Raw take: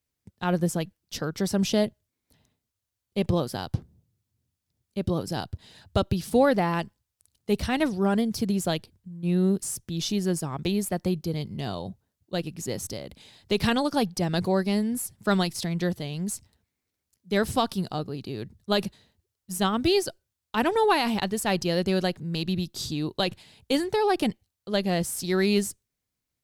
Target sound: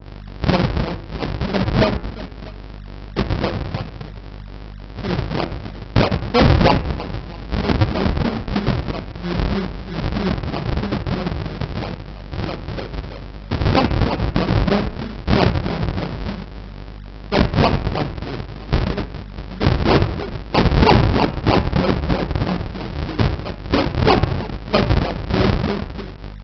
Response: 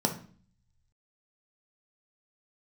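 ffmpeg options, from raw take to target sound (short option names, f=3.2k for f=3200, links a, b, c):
-filter_complex "[0:a]bandreject=f=2k:w=11,acrossover=split=570[a][b];[b]acontrast=63[c];[a][c]amix=inputs=2:normalize=0,aeval=exprs='val(0)+0.0126*(sin(2*PI*50*n/s)+sin(2*PI*2*50*n/s)/2+sin(2*PI*3*50*n/s)/3+sin(2*PI*4*50*n/s)/4+sin(2*PI*5*50*n/s)/5)':c=same,adynamicsmooth=sensitivity=2:basefreq=1.4k,lowpass=f=3.8k:w=0.5412,lowpass=f=3.8k:w=1.3066,tiltshelf=f=1.2k:g=-5.5,aecho=1:1:60|144|261.6|426.2|656.7:0.631|0.398|0.251|0.158|0.1,aresample=11025,acrusher=samples=29:mix=1:aa=0.000001:lfo=1:lforange=46.4:lforate=3.1,aresample=44100,highpass=49,bandreject=f=84.01:t=h:w=4,bandreject=f=168.02:t=h:w=4,bandreject=f=252.03:t=h:w=4,bandreject=f=336.04:t=h:w=4,bandreject=f=420.05:t=h:w=4,bandreject=f=504.06:t=h:w=4,bandreject=f=588.07:t=h:w=4,bandreject=f=672.08:t=h:w=4,bandreject=f=756.09:t=h:w=4,bandreject=f=840.1:t=h:w=4,bandreject=f=924.11:t=h:w=4,bandreject=f=1.00812k:t=h:w=4,bandreject=f=1.09213k:t=h:w=4,bandreject=f=1.17614k:t=h:w=4,bandreject=f=1.26015k:t=h:w=4,bandreject=f=1.34416k:t=h:w=4,bandreject=f=1.42817k:t=h:w=4,bandreject=f=1.51218k:t=h:w=4,bandreject=f=1.59619k:t=h:w=4,bandreject=f=1.6802k:t=h:w=4,bandreject=f=1.76421k:t=h:w=4,bandreject=f=1.84822k:t=h:w=4,bandreject=f=1.93223k:t=h:w=4,bandreject=f=2.01624k:t=h:w=4,bandreject=f=2.10025k:t=h:w=4,bandreject=f=2.18426k:t=h:w=4,bandreject=f=2.26827k:t=h:w=4,bandreject=f=2.35228k:t=h:w=4,bandreject=f=2.43629k:t=h:w=4,bandreject=f=2.5203k:t=h:w=4,bandreject=f=2.60431k:t=h:w=4,bandreject=f=2.68832k:t=h:w=4,bandreject=f=2.77233k:t=h:w=4,bandreject=f=2.85634k:t=h:w=4,alimiter=level_in=8dB:limit=-1dB:release=50:level=0:latency=1,adynamicequalizer=threshold=0.0282:dfrequency=1800:dqfactor=0.7:tfrequency=1800:tqfactor=0.7:attack=5:release=100:ratio=0.375:range=2:mode=cutabove:tftype=highshelf"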